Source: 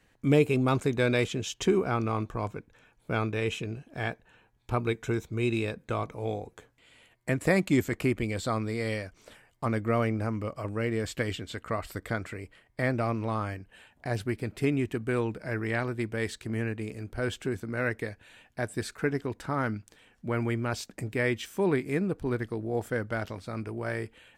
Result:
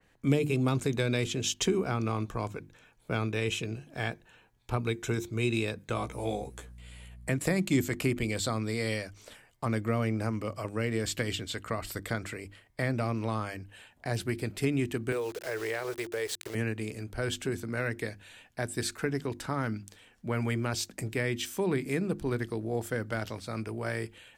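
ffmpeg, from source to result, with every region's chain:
-filter_complex "[0:a]asettb=1/sr,asplit=3[a][b][c];[a]atrim=end=5.954[d];[b]atrim=start=5.95:end=7.29,asetpts=PTS-STARTPTS,afade=t=in:d=0.004:c=qsin,afade=t=out:st=1.336:d=0.004:c=qsin,equalizer=f=9.6k:w=2.7:g=10.5,aeval=exprs='val(0)+0.00316*(sin(2*PI*60*n/s)+sin(2*PI*2*60*n/s)/2+sin(2*PI*3*60*n/s)/3+sin(2*PI*4*60*n/s)/4+sin(2*PI*5*60*n/s)/5)':c=same,asplit=2[e][f];[f]adelay=15,volume=-2.5dB[g];[e][g]amix=inputs=2:normalize=0,atrim=end_sample=59094[h];[c]atrim=start=7.286[i];[d][h]acrossfade=d=0.004:c1=hsin:c2=qsin[j];[j][i]acrossfade=d=0.004:c1=qsin:c2=hsin,asettb=1/sr,asplit=3[k][l][m];[k]atrim=end=15.124[n];[l]atrim=start=15.12:end=16.55,asetpts=PTS-STARTPTS,afade=t=in:d=0.004:c=qsin,afade=t=out:st=1.426:d=0.004:c=qsin,lowshelf=f=320:t=q:w=3:g=-9.5,aeval=exprs='val(0)*gte(abs(val(0)),0.00841)':c=same,acompressor=threshold=-30dB:ratio=2:attack=3.2:release=140:knee=1:detection=peak[o];[m]atrim=start=16.546[p];[n][o]acrossfade=d=0.004:c1=hsin:c2=qsin[q];[q][p]acrossfade=d=0.004:c1=qsin:c2=hsin,bandreject=f=50:t=h:w=6,bandreject=f=100:t=h:w=6,bandreject=f=150:t=h:w=6,bandreject=f=200:t=h:w=6,bandreject=f=250:t=h:w=6,bandreject=f=300:t=h:w=6,bandreject=f=350:t=h:w=6,acrossover=split=300[r][s];[s]acompressor=threshold=-30dB:ratio=5[t];[r][t]amix=inputs=2:normalize=0,adynamicequalizer=threshold=0.00282:dfrequency=2700:dqfactor=0.7:tfrequency=2700:tqfactor=0.7:attack=5:release=100:ratio=0.375:range=3.5:mode=boostabove:tftype=highshelf"

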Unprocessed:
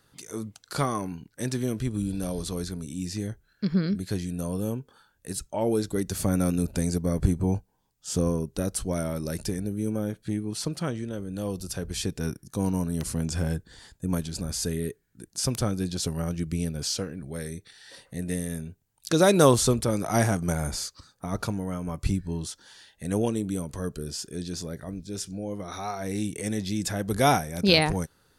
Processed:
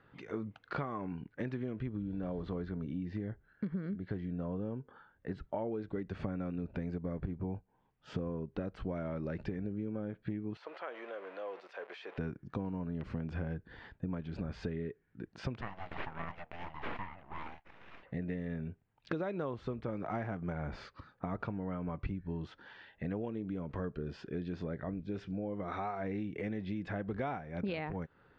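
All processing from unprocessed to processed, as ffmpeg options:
-filter_complex "[0:a]asettb=1/sr,asplit=3[a][b][c];[a]atrim=end=1.874[d];[b]atrim=start=1.87:end=5.71,asetpts=PTS-STARTPTS,afade=t=in:d=0.004:c=qsin,afade=t=out:st=3.836:d=0.004:c=qsin,lowpass=f=3.5k:p=1,bandreject=f=2.5k:w=7.9[e];[c]atrim=start=5.706[f];[d][e]acrossfade=d=0.004:c1=hsin:c2=qsin[g];[g][f]acrossfade=d=0.004:c1=qsin:c2=hsin,asettb=1/sr,asplit=3[h][i][j];[h]atrim=end=10.574[k];[i]atrim=start=10.57:end=12.18,asetpts=PTS-STARTPTS,afade=t=in:d=0.004:c=qsin,afade=t=out:st=1.606:d=0.004:c=qsin,aeval=exprs='val(0)+0.5*0.00891*sgn(val(0))':c=same,highpass=f=510:w=0.5412,highpass=f=510:w=1.3066,acompressor=threshold=-42dB:ratio=2.5:attack=3.2:release=140:knee=1:detection=peak[l];[j]atrim=start=12.176[m];[k][l]acrossfade=d=0.004:c1=hsin:c2=qsin[n];[n][m]acrossfade=d=0.004:c1=qsin:c2=hsin,asettb=1/sr,asplit=3[o][p][q];[o]atrim=end=15.614[r];[p]atrim=start=15.61:end=18.03,asetpts=PTS-STARTPTS,afade=t=in:d=0.004:c=qsin,afade=t=out:st=2.416:d=0.004:c=qsin,highpass=f=410:w=0.5412,highpass=f=410:w=1.3066,aeval=exprs='abs(val(0))':c=same[s];[q]atrim=start=18.026[t];[r][s]acrossfade=d=0.004:c1=hsin:c2=qsin[u];[u][t]acrossfade=d=0.004:c1=qsin:c2=hsin,lowpass=f=2.5k:w=0.5412,lowpass=f=2.5k:w=1.3066,lowshelf=f=85:g=-6.5,acompressor=threshold=-36dB:ratio=12,volume=2dB"

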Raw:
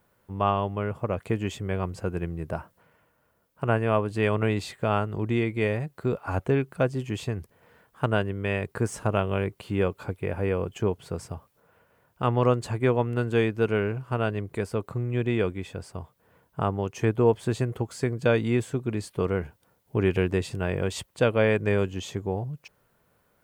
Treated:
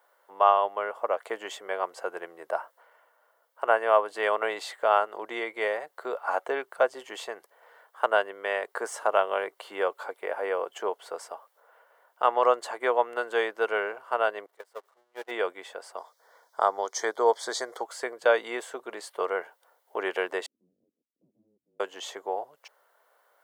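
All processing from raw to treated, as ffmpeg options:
-filter_complex "[0:a]asettb=1/sr,asplit=3[a][b][c];[a]atrim=end=14.464[d];[b]atrim=start=14.46:end=15.31,asetpts=PTS-STARTPTS,afade=t=in:d=0.004:c=qsin,afade=t=out:st=0.846:d=0.004:c=qsin,aeval=exprs='val(0)+0.5*0.0316*sgn(val(0))':c=same,agate=range=-34dB:threshold=-22dB:ratio=16:release=100:detection=peak[e];[c]atrim=start=15.306[f];[d][e]acrossfade=d=0.004:c1=hsin:c2=qsin[g];[g][f]acrossfade=d=0.004:c1=qsin:c2=hsin,asettb=1/sr,asplit=3[h][i][j];[h]atrim=end=15.974[k];[i]atrim=start=15.97:end=17.84,asetpts=PTS-STARTPTS,afade=t=in:d=0.004:c=qsin,afade=t=out:st=1.866:d=0.004:c=qsin,asuperstop=centerf=2700:order=4:qfactor=2.9,equalizer=f=5.5k:t=o:w=1.2:g=13.5[l];[j]atrim=start=17.836[m];[k][l]acrossfade=d=0.004:c1=hsin:c2=qsin[n];[n][m]acrossfade=d=0.004:c1=qsin:c2=hsin,asettb=1/sr,asplit=3[o][p][q];[o]atrim=end=20.464[r];[p]atrim=start=20.46:end=21.8,asetpts=PTS-STARTPTS,afade=t=in:d=0.004:c=qsin,afade=t=out:st=1.336:d=0.004:c=qsin,asoftclip=type=hard:threshold=-24.5dB,asuperpass=centerf=500:order=12:qfactor=1.4,afreqshift=-440[s];[q]atrim=start=21.796[t];[r][s]acrossfade=d=0.004:c1=hsin:c2=qsin[u];[u][t]acrossfade=d=0.004:c1=qsin:c2=hsin,highpass=f=580:w=0.5412,highpass=f=580:w=1.3066,highshelf=f=2.1k:g=-8,bandreject=f=2.5k:w=6.7,volume=7dB"

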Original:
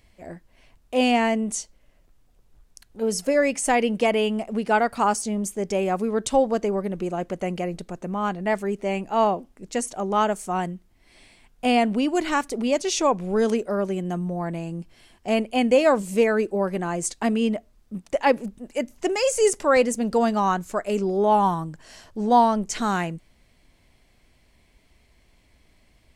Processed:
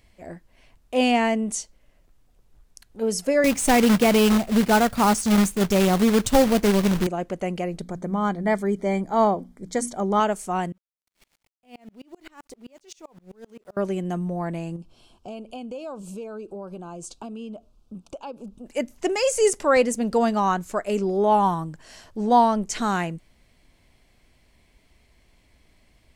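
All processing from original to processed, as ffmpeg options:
-filter_complex "[0:a]asettb=1/sr,asplit=3[a][b][c];[a]atrim=end=3.444[d];[b]atrim=start=3.44:end=7.07,asetpts=PTS-STARTPTS,afade=t=in:d=0.004:c=qsin,afade=t=out:st=3.626:d=0.004:c=qsin,bass=f=250:g=13,treble=f=4k:g=1,acrusher=bits=2:mode=log:mix=0:aa=0.000001[e];[c]atrim=start=7.066[f];[d][e]acrossfade=d=0.004:c1=hsin:c2=qsin[g];[g][f]acrossfade=d=0.004:c1=qsin:c2=hsin,asettb=1/sr,asplit=3[h][i][j];[h]atrim=end=7.804[k];[i]atrim=start=7.8:end=10.2,asetpts=PTS-STARTPTS,afade=t=in:d=0.004:c=qsin,afade=t=out:st=2.396:d=0.004:c=qsin,asuperstop=centerf=2700:order=20:qfactor=5,equalizer=f=130:t=o:w=2.4:g=5.5,bandreject=f=60:t=h:w=6,bandreject=f=120:t=h:w=6,bandreject=f=180:t=h:w=6,bandreject=f=240:t=h:w=6,bandreject=f=300:t=h:w=6[l];[j]atrim=start=10.196[m];[k][l]acrossfade=d=0.004:c1=hsin:c2=qsin[n];[n][m]acrossfade=d=0.004:c1=qsin:c2=hsin,asettb=1/sr,asplit=3[o][p][q];[o]atrim=end=10.724[r];[p]atrim=start=10.72:end=13.77,asetpts=PTS-STARTPTS,afade=t=in:d=0.004:c=qsin,afade=t=out:st=3.046:d=0.004:c=qsin,acompressor=threshold=-35dB:ratio=6:attack=3.2:release=140:knee=1:detection=peak,aeval=exprs='val(0)*gte(abs(val(0)),0.00398)':c=same,aeval=exprs='val(0)*pow(10,-31*if(lt(mod(-7.7*n/s,1),2*abs(-7.7)/1000),1-mod(-7.7*n/s,1)/(2*abs(-7.7)/1000),(mod(-7.7*n/s,1)-2*abs(-7.7)/1000)/(1-2*abs(-7.7)/1000))/20)':c=same[s];[q]atrim=start=13.766[t];[r][s]acrossfade=d=0.004:c1=hsin:c2=qsin[u];[u][t]acrossfade=d=0.004:c1=qsin:c2=hsin,asettb=1/sr,asplit=3[v][w][x];[v]atrim=end=14.764[y];[w]atrim=start=14.76:end=18.66,asetpts=PTS-STARTPTS,afade=t=in:d=0.004:c=qsin,afade=t=out:st=3.896:d=0.004:c=qsin,highshelf=f=9k:g=-10.5,acompressor=threshold=-35dB:ratio=4:attack=3.2:release=140:knee=1:detection=peak,asuperstop=centerf=1900:order=4:qfactor=1.6[z];[x]atrim=start=18.656[aa];[y][z]acrossfade=d=0.004:c1=hsin:c2=qsin[ab];[ab][aa]acrossfade=d=0.004:c1=qsin:c2=hsin"

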